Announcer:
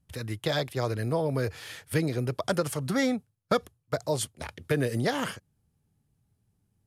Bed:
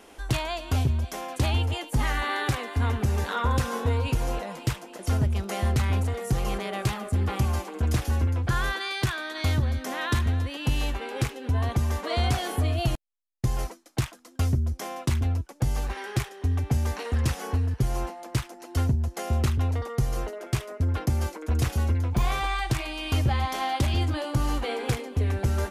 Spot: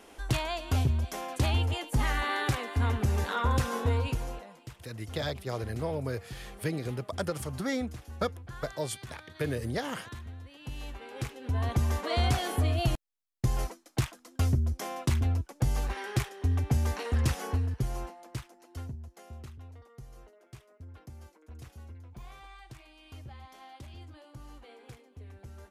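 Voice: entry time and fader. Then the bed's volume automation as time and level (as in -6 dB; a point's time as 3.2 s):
4.70 s, -5.5 dB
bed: 3.99 s -2.5 dB
4.68 s -18.5 dB
10.41 s -18.5 dB
11.79 s -2 dB
17.4 s -2 dB
19.57 s -22.5 dB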